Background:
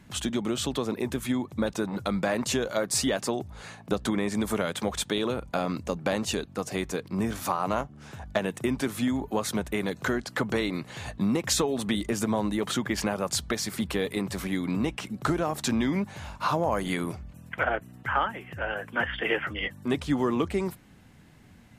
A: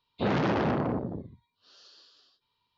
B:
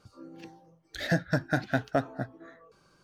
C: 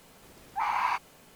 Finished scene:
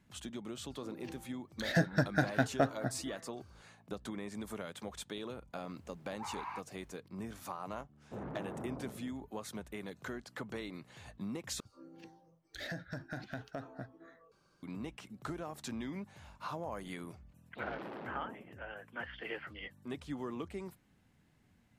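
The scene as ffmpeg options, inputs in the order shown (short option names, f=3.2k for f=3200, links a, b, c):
-filter_complex "[2:a]asplit=2[a][b];[1:a]asplit=2[c][d];[0:a]volume=-15dB[e];[3:a]highshelf=f=3.3k:g=-10.5[f];[c]lowpass=1.2k[g];[b]acompressor=threshold=-31dB:ratio=4:attack=5.3:release=45:knee=1:detection=rms[h];[d]highpass=220,lowpass=4.4k[i];[e]asplit=2[j][k];[j]atrim=end=11.604[l];[h]atrim=end=3.03,asetpts=PTS-STARTPTS,volume=-7.5dB[m];[k]atrim=start=14.626[n];[a]atrim=end=3.03,asetpts=PTS-STARTPTS,volume=-2.5dB,afade=t=in:d=0.1,afade=t=out:st=2.93:d=0.1,adelay=650[o];[f]atrim=end=1.35,asetpts=PTS-STARTPTS,volume=-14dB,afade=t=in:d=0.004:c=hsin,afade=t=out:st=1.346:d=0.004:c=hsin,adelay=5630[p];[g]atrim=end=2.77,asetpts=PTS-STARTPTS,volume=-16.5dB,afade=t=in:d=0.004:c=hsin,afade=t=out:st=2.766:d=0.004:c=hsin,adelay=7910[q];[i]atrim=end=2.77,asetpts=PTS-STARTPTS,volume=-17.5dB,afade=t=in:d=0.004:c=hsin,afade=t=out:st=2.766:d=0.004:c=hsin,adelay=17360[r];[l][m]acrossfade=d=0.004:c1=hsin:c2=hsin[s];[s][n]acrossfade=d=0.004:c1=hsin:c2=hsin[t];[t][o][p][q][r]amix=inputs=5:normalize=0"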